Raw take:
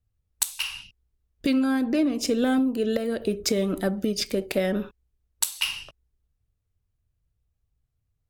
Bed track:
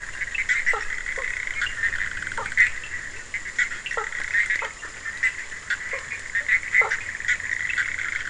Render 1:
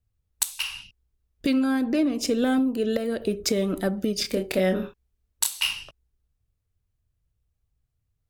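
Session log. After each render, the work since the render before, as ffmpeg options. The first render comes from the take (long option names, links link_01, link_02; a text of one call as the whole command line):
ffmpeg -i in.wav -filter_complex "[0:a]asettb=1/sr,asplit=3[link_01][link_02][link_03];[link_01]atrim=end=4.214[link_04];[link_02]atrim=start=4.21:end=5.73,asetpts=PTS-STARTPTS,afade=type=in:duration=0.004:curve=qsin,afade=type=out:start_time=1.516:duration=0.004:curve=qsin,asplit=2[link_05][link_06];[link_06]adelay=27,volume=-5dB[link_07];[link_05][link_07]amix=inputs=2:normalize=0,atrim=end_sample=67032[link_08];[link_03]atrim=start=5.726[link_09];[link_04][link_08]acrossfade=duration=0.004:curve1=hsin:curve2=qsin[link_10];[link_10][link_09]acrossfade=duration=0.004:curve1=qsin:curve2=hsin" out.wav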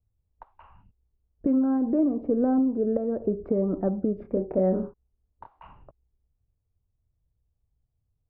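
ffmpeg -i in.wav -af "lowpass=frequency=1000:width=0.5412,lowpass=frequency=1000:width=1.3066,aemphasis=mode=reproduction:type=75kf" out.wav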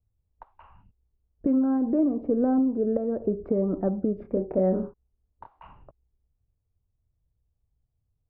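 ffmpeg -i in.wav -af anull out.wav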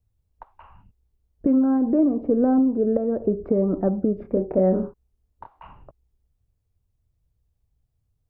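ffmpeg -i in.wav -af "volume=4dB" out.wav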